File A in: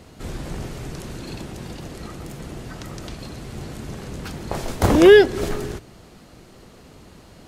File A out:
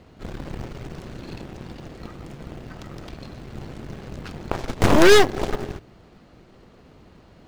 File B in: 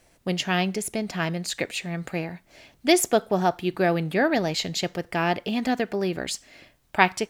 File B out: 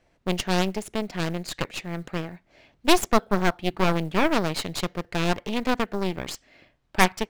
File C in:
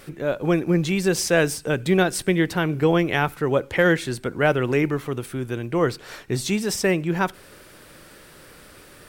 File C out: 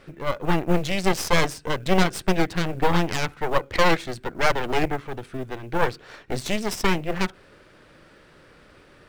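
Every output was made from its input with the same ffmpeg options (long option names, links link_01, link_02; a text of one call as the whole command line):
ffmpeg -i in.wav -af "adynamicsmooth=sensitivity=5.5:basefreq=4200,aeval=exprs='0.891*(cos(1*acos(clip(val(0)/0.891,-1,1)))-cos(1*PI/2))+0.00708*(cos(5*acos(clip(val(0)/0.891,-1,1)))-cos(5*PI/2))+0.282*(cos(8*acos(clip(val(0)/0.891,-1,1)))-cos(8*PI/2))':channel_layout=same,acrusher=bits=8:mode=log:mix=0:aa=0.000001,volume=-4dB" out.wav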